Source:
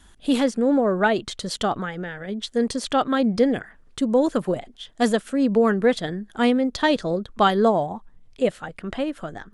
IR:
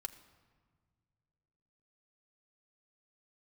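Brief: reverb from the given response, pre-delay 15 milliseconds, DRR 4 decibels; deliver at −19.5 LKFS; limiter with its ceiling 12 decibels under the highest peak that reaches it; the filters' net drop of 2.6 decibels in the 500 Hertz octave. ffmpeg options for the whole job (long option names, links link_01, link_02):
-filter_complex "[0:a]equalizer=frequency=500:width_type=o:gain=-3,alimiter=limit=-19.5dB:level=0:latency=1,asplit=2[link_01][link_02];[1:a]atrim=start_sample=2205,adelay=15[link_03];[link_02][link_03]afir=irnorm=-1:irlink=0,volume=-1.5dB[link_04];[link_01][link_04]amix=inputs=2:normalize=0,volume=8dB"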